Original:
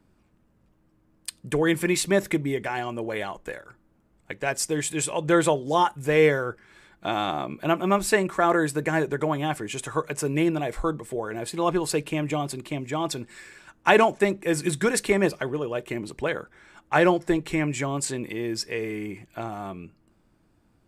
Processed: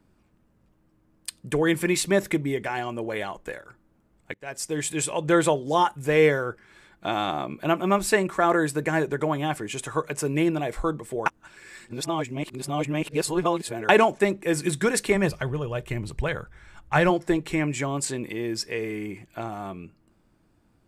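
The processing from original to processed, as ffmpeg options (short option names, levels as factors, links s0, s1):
-filter_complex "[0:a]asplit=3[s0][s1][s2];[s0]afade=t=out:st=15.14:d=0.02[s3];[s1]asubboost=boost=9:cutoff=93,afade=t=in:st=15.14:d=0.02,afade=t=out:st=17.09:d=0.02[s4];[s2]afade=t=in:st=17.09:d=0.02[s5];[s3][s4][s5]amix=inputs=3:normalize=0,asplit=4[s6][s7][s8][s9];[s6]atrim=end=4.34,asetpts=PTS-STARTPTS,afade=t=out:st=4.336:d=0.004:c=hsin:silence=0.0749894[s10];[s7]atrim=start=4.34:end=11.262,asetpts=PTS-STARTPTS,afade=t=in:d=0.53:silence=0.0749894[s11];[s8]atrim=start=11.258:end=13.892,asetpts=PTS-STARTPTS,areverse[s12];[s9]atrim=start=13.888[s13];[s10][s11]concat=n=2:v=0:a=1[s14];[s14][s12]acrossfade=d=0.004:c1=hsin:c2=hsin[s15];[s15][s13]acrossfade=d=0.004:c1=hsin:c2=hsin"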